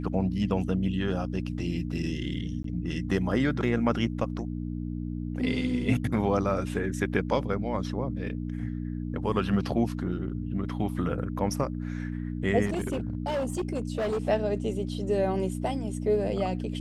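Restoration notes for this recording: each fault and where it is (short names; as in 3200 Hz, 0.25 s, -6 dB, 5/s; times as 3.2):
hum 60 Hz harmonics 5 -33 dBFS
2.63–2.64 gap 13 ms
12.65–14.23 clipped -25 dBFS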